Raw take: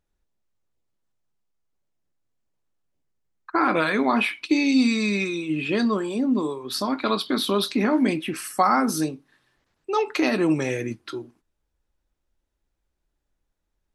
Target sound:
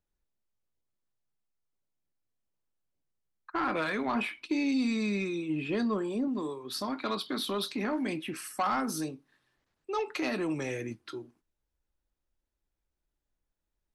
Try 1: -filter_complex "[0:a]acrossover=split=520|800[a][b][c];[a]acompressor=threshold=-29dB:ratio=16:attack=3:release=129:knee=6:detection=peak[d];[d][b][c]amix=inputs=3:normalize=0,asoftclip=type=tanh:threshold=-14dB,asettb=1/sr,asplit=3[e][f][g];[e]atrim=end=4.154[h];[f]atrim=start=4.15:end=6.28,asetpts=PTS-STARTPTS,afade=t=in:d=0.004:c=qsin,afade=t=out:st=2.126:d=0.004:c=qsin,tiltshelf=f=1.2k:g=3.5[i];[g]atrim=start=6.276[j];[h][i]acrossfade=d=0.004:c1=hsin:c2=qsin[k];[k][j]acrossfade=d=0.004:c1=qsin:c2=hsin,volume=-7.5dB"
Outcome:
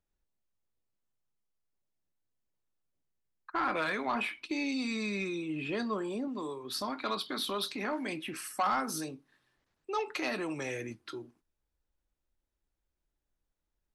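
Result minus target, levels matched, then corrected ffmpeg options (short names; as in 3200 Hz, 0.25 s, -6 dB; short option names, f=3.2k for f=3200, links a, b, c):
compressor: peak gain reduction +8.5 dB
-filter_complex "[0:a]acrossover=split=520|800[a][b][c];[a]acompressor=threshold=-20dB:ratio=16:attack=3:release=129:knee=6:detection=peak[d];[d][b][c]amix=inputs=3:normalize=0,asoftclip=type=tanh:threshold=-14dB,asettb=1/sr,asplit=3[e][f][g];[e]atrim=end=4.154[h];[f]atrim=start=4.15:end=6.28,asetpts=PTS-STARTPTS,afade=t=in:d=0.004:c=qsin,afade=t=out:st=2.126:d=0.004:c=qsin,tiltshelf=f=1.2k:g=3.5[i];[g]atrim=start=6.276[j];[h][i]acrossfade=d=0.004:c1=hsin:c2=qsin[k];[k][j]acrossfade=d=0.004:c1=qsin:c2=hsin,volume=-7.5dB"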